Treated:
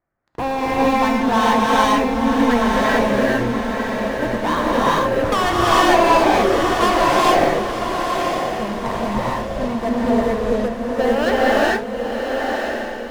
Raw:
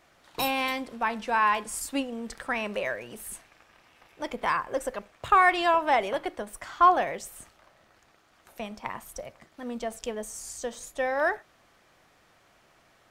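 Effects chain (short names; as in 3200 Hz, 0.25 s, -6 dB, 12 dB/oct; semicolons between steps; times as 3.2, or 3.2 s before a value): steep low-pass 2000 Hz; low shelf 270 Hz +9.5 dB; sample leveller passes 5; diffused feedback echo 1.002 s, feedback 42%, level -5 dB; non-linear reverb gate 0.48 s rising, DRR -6.5 dB; gain -10 dB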